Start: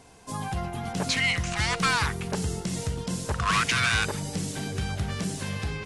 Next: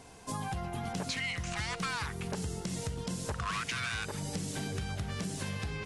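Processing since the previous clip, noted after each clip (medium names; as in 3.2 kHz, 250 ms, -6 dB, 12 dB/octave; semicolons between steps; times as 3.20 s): compression, threshold -33 dBFS, peak gain reduction 12.5 dB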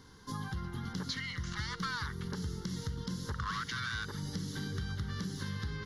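static phaser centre 2.5 kHz, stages 6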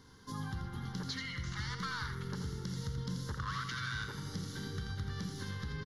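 delay 84 ms -7 dB; on a send at -11 dB: reverberation RT60 3.2 s, pre-delay 38 ms; on the sum: trim -3 dB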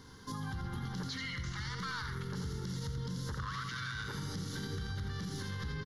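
peak limiter -36 dBFS, peak gain reduction 8.5 dB; trim +5 dB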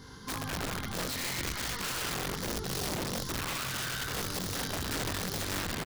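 speakerphone echo 290 ms, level -15 dB; chorus voices 2, 1.2 Hz, delay 21 ms, depth 3 ms; integer overflow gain 37.5 dB; trim +8.5 dB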